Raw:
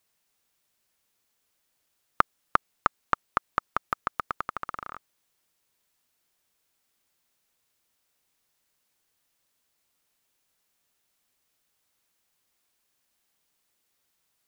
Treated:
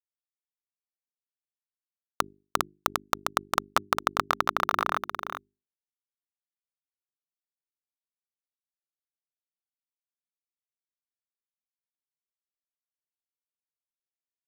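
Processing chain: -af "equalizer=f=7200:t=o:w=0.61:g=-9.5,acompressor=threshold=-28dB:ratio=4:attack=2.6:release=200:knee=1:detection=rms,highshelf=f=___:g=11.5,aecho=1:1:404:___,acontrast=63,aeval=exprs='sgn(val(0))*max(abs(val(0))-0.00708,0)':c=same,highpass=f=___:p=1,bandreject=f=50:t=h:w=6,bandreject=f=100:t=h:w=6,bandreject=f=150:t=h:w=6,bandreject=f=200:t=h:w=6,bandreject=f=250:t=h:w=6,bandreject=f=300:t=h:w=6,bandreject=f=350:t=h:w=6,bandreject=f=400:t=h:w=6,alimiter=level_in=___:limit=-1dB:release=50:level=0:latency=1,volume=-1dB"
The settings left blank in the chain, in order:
4700, 0.447, 110, 8.5dB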